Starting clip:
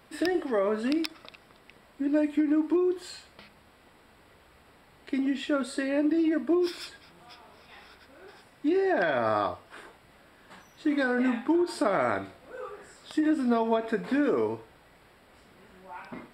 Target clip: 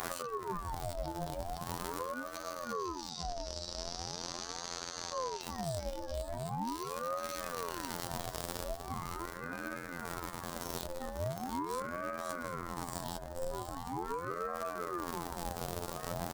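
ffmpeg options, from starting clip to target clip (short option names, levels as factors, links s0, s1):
-filter_complex "[0:a]aeval=exprs='val(0)+0.5*0.0282*sgn(val(0))':c=same,asplit=2[s0][s1];[s1]aecho=0:1:512|1024|1536|2048:0.708|0.219|0.068|0.0211[s2];[s0][s2]amix=inputs=2:normalize=0,acompressor=threshold=0.01:ratio=4,asettb=1/sr,asplit=3[s3][s4][s5];[s3]atrim=end=2.364[s6];[s4]atrim=start=2.36:end=5.42,asetpts=PTS-STARTPTS,afade=t=in:d=0.004:c=qsin,afade=t=out:st=3.056:d=0.004:c=qsin,lowpass=f=5400:t=q:w=10[s7];[s5]atrim=start=5.416[s8];[s6][s7]acrossfade=d=0.004:c1=hsin:c2=qsin[s9];[s9][s8]acrossfade=d=0.004:c1=qsin:c2=hsin,alimiter=level_in=3.35:limit=0.0631:level=0:latency=1:release=35,volume=0.299,equalizer=f=2100:w=1.1:g=-15,asplit=2[s10][s11];[s11]aecho=0:1:726:0.398[s12];[s10][s12]amix=inputs=2:normalize=0,afftfilt=real='hypot(re,im)*cos(PI*b)':imag='0':win_size=2048:overlap=0.75,aeval=exprs='val(0)*sin(2*PI*590*n/s+590*0.55/0.41*sin(2*PI*0.41*n/s))':c=same,volume=2.99"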